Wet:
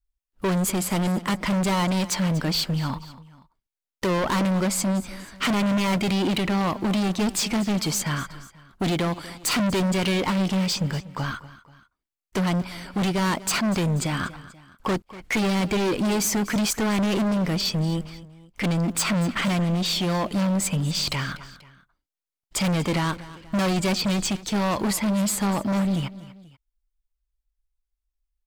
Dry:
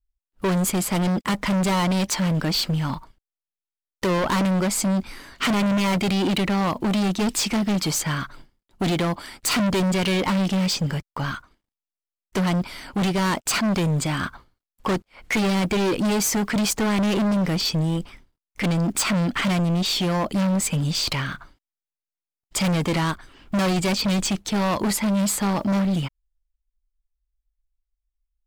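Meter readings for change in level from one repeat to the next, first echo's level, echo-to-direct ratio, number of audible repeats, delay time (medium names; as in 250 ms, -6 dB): -6.0 dB, -17.5 dB, -16.5 dB, 2, 242 ms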